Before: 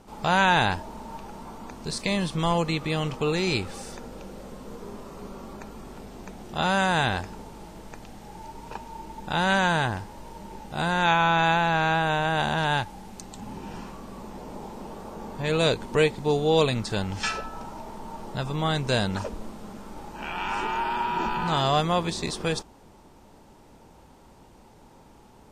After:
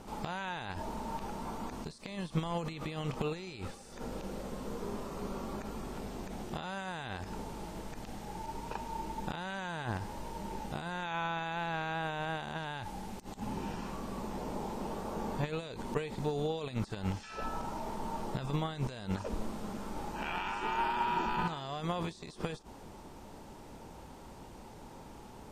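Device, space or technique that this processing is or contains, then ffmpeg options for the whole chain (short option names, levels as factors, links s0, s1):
de-esser from a sidechain: -filter_complex "[0:a]asplit=2[s0][s1];[s1]highpass=f=4500:w=0.5412,highpass=f=4500:w=1.3066,apad=whole_len=1125283[s2];[s0][s2]sidechaincompress=threshold=0.00158:ratio=12:attack=0.94:release=46,volume=1.33"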